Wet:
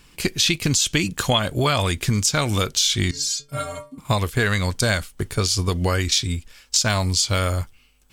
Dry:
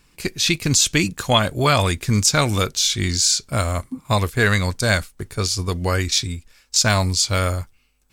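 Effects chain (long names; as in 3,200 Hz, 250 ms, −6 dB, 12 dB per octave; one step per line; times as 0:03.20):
0:03.11–0:03.98: stiff-string resonator 140 Hz, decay 0.37 s, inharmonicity 0.008
downward compressor, threshold −22 dBFS, peak gain reduction 11 dB
parametric band 3,100 Hz +6 dB 0.24 octaves
level +5 dB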